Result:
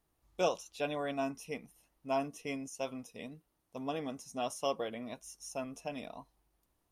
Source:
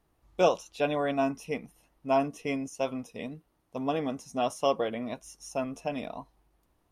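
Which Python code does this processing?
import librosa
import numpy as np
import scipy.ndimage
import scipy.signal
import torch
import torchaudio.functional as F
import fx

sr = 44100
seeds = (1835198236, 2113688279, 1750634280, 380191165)

y = fx.high_shelf(x, sr, hz=3900.0, db=8.5)
y = F.gain(torch.from_numpy(y), -8.0).numpy()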